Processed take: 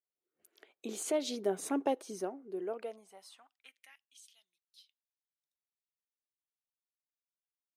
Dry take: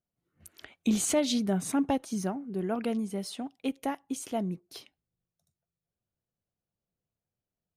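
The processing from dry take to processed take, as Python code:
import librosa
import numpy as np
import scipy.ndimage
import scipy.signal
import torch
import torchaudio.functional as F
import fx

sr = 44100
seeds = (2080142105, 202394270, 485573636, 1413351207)

y = fx.doppler_pass(x, sr, speed_mps=8, closest_m=4.0, pass_at_s=1.75)
y = fx.filter_sweep_highpass(y, sr, from_hz=410.0, to_hz=3600.0, start_s=2.66, end_s=4.25, q=3.0)
y = y * 10.0 ** (-5.0 / 20.0)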